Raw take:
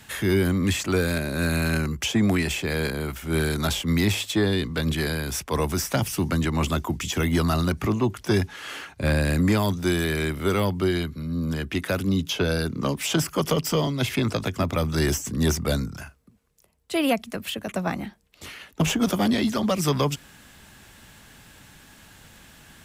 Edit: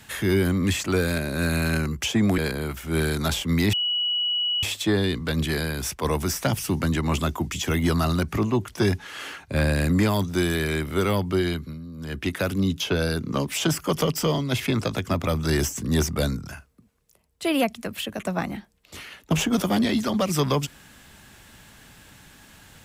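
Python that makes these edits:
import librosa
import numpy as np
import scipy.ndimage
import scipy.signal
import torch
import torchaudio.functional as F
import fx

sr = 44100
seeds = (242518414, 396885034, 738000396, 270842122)

y = fx.edit(x, sr, fx.cut(start_s=2.38, length_s=0.39),
    fx.insert_tone(at_s=4.12, length_s=0.9, hz=2930.0, db=-21.5),
    fx.fade_down_up(start_s=11.16, length_s=0.49, db=-12.5, fade_s=0.24, curve='qua'), tone=tone)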